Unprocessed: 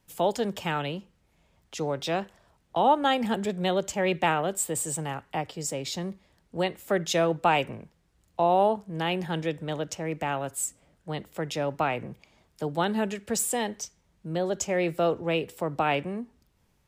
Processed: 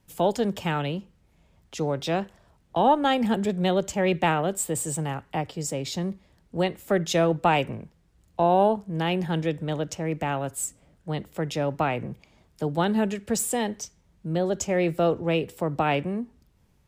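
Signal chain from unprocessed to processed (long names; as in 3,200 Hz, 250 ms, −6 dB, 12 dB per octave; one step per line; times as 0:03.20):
harmonic generator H 2 −26 dB, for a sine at −10 dBFS
low-shelf EQ 350 Hz +6.5 dB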